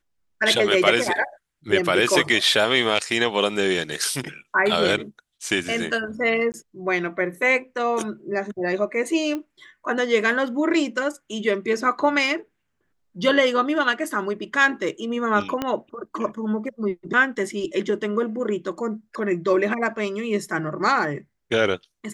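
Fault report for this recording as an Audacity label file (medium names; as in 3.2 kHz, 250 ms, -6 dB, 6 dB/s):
6.520000	6.540000	dropout 19 ms
9.350000	9.350000	pop -17 dBFS
15.620000	15.620000	pop -11 dBFS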